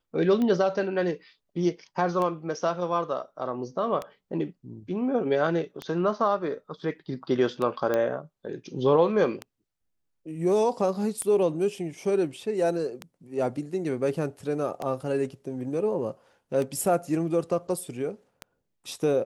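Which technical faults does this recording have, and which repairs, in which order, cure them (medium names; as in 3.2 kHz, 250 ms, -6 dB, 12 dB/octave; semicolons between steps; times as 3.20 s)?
tick 33 1/3 rpm -18 dBFS
7.94 s: pop -14 dBFS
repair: de-click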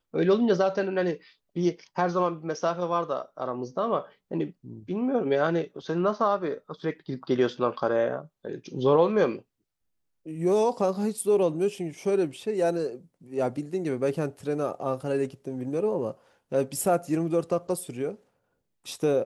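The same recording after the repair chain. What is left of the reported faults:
nothing left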